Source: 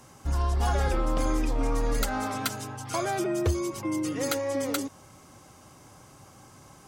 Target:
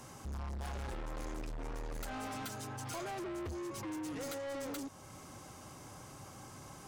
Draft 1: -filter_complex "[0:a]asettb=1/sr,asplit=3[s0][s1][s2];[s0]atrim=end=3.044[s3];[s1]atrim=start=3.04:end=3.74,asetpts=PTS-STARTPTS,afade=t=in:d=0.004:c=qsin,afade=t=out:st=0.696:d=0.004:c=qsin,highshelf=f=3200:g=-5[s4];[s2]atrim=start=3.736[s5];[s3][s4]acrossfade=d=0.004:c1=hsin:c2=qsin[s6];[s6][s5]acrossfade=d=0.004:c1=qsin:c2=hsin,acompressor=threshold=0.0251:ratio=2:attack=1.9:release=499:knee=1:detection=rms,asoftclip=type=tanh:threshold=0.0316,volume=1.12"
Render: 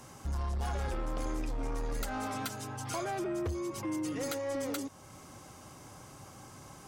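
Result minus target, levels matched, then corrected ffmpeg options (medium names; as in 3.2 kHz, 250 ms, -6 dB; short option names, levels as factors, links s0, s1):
saturation: distortion -8 dB
-filter_complex "[0:a]asettb=1/sr,asplit=3[s0][s1][s2];[s0]atrim=end=3.044[s3];[s1]atrim=start=3.04:end=3.74,asetpts=PTS-STARTPTS,afade=t=in:d=0.004:c=qsin,afade=t=out:st=0.696:d=0.004:c=qsin,highshelf=f=3200:g=-5[s4];[s2]atrim=start=3.736[s5];[s3][s4]acrossfade=d=0.004:c1=hsin:c2=qsin[s6];[s6][s5]acrossfade=d=0.004:c1=qsin:c2=hsin,acompressor=threshold=0.0251:ratio=2:attack=1.9:release=499:knee=1:detection=rms,asoftclip=type=tanh:threshold=0.01,volume=1.12"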